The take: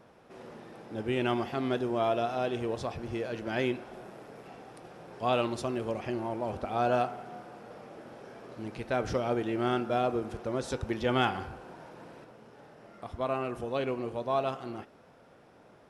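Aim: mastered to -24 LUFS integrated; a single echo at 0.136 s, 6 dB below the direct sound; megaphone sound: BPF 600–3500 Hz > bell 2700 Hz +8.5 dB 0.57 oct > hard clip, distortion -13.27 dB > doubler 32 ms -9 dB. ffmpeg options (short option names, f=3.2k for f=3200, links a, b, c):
-filter_complex "[0:a]highpass=600,lowpass=3.5k,equalizer=f=2.7k:t=o:w=0.57:g=8.5,aecho=1:1:136:0.501,asoftclip=type=hard:threshold=-25.5dB,asplit=2[a][b];[b]adelay=32,volume=-9dB[c];[a][c]amix=inputs=2:normalize=0,volume=9.5dB"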